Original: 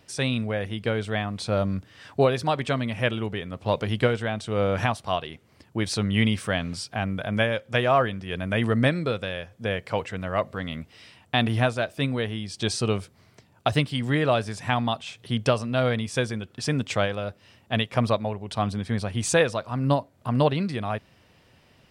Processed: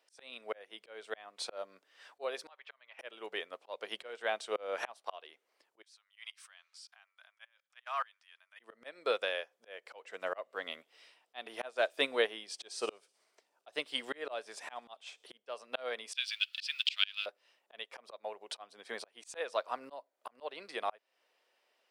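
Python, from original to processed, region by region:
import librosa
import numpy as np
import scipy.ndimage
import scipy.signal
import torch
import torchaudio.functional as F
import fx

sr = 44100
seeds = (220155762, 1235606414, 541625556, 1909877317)

y = fx.chain(x, sr, fx.highpass(hz=1100.0, slope=12),
    fx.auto_swell(attack_ms=357.0),
    fx.air_absorb(metres=280.0), at=(2.49, 2.99))
y = fx.chain(y, sr, fx.peak_eq(hz=5600.0, db=4.0, octaves=1.4),
    fx.level_steps(step_db=22),
    fx.highpass(hz=1000.0, slope=24), at=(5.82, 8.6))
y = fx.chain(y, sr, fx.low_shelf(hz=490.0, db=4.0),
    fx.echo_wet_highpass(ms=63, feedback_pct=72, hz=5200.0, wet_db=-17), at=(10.04, 15.37))
y = fx.chain(y, sr, fx.law_mismatch(coded='mu'),
    fx.highpass(hz=1500.0, slope=24),
    fx.band_shelf(hz=3500.0, db=15.5, octaves=1.3), at=(16.13, 17.26))
y = scipy.signal.sosfilt(scipy.signal.butter(4, 440.0, 'highpass', fs=sr, output='sos'), y)
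y = fx.auto_swell(y, sr, attack_ms=327.0)
y = fx.upward_expand(y, sr, threshold_db=-56.0, expansion=1.5)
y = y * 10.0 ** (1.0 / 20.0)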